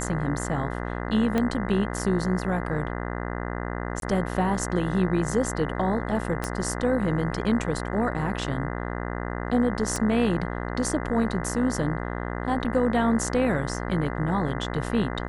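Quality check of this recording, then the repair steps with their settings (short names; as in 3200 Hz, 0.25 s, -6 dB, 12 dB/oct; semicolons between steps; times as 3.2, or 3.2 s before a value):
buzz 60 Hz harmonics 34 -31 dBFS
1.38 pop -12 dBFS
4–4.02 gap 22 ms
6.44 pop -14 dBFS
9.96 pop -16 dBFS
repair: de-click; de-hum 60 Hz, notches 34; interpolate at 4, 22 ms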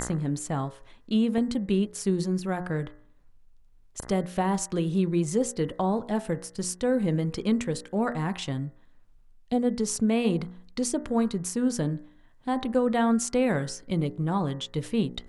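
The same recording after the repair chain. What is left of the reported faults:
1.38 pop
6.44 pop
9.96 pop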